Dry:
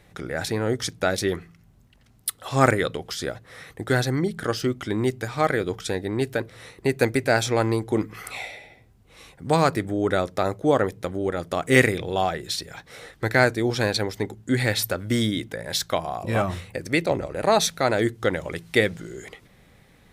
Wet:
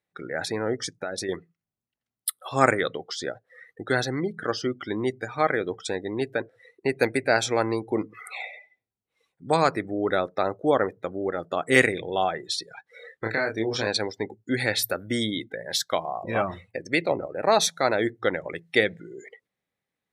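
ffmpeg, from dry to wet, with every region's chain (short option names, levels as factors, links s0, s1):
-filter_complex "[0:a]asettb=1/sr,asplit=3[s0][s1][s2];[s0]atrim=end=0.754[s3];[s1]atrim=start=0.75:end=1.29,asetpts=PTS-STARTPTS,afade=t=in:d=0.004:c=qsin,afade=t=out:st=0.536:d=0.004:c=qsin,equalizer=f=3500:w=2.3:g=-3,acompressor=threshold=0.0631:ratio=12:attack=3.2:release=140:knee=1:detection=peak[s4];[s2]atrim=start=1.286[s5];[s3][s4]acrossfade=d=0.004:c1=hsin:c2=qsin[s6];[s6][s5]acrossfade=d=0.004:c1=qsin:c2=hsin,asettb=1/sr,asplit=3[s7][s8][s9];[s7]atrim=end=12.924[s10];[s8]atrim=start=12.92:end=13.87,asetpts=PTS-STARTPTS,afade=t=in:d=0.004:c=qsin,afade=t=out:st=0.946:d=0.004:c=qsin,equalizer=f=830:w=5.4:g=-2.5,acompressor=threshold=0.1:ratio=8:attack=3.2:release=140:knee=1:detection=peak,asplit=2[s11][s12];[s12]adelay=27,volume=0.708[s13];[s11][s13]amix=inputs=2:normalize=0,atrim=end_sample=41895[s14];[s9]atrim=start=13.866[s15];[s10][s14]acrossfade=d=0.004:c1=hsin:c2=qsin[s16];[s16][s15]acrossfade=d=0.004:c1=qsin:c2=hsin,highpass=f=310:p=1,afftdn=nr=28:nf=-37"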